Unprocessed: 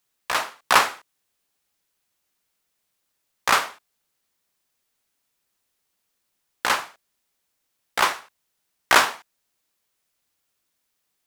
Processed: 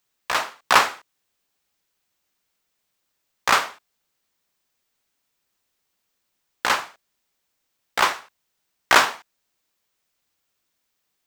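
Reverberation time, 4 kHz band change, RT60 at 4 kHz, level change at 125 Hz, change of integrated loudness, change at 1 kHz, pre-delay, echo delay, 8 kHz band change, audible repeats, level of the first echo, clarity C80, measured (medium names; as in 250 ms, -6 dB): no reverb, +1.0 dB, no reverb, +1.0 dB, +1.0 dB, +1.0 dB, no reverb, no echo, -0.5 dB, no echo, no echo, no reverb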